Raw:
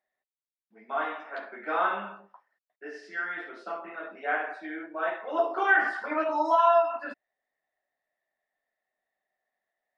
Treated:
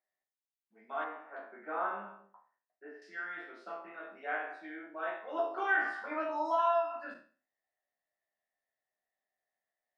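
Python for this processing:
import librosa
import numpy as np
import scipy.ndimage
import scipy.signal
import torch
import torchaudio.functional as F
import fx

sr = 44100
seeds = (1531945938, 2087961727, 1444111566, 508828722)

y = fx.spec_trails(x, sr, decay_s=0.39)
y = fx.lowpass(y, sr, hz=1600.0, slope=12, at=(1.04, 3.02))
y = y * 10.0 ** (-8.5 / 20.0)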